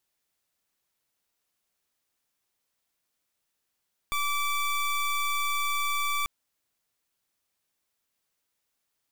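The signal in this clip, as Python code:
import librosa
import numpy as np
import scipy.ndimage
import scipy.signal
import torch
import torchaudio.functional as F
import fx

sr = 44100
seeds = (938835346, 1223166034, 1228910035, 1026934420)

y = fx.pulse(sr, length_s=2.14, hz=1160.0, level_db=-27.5, duty_pct=22)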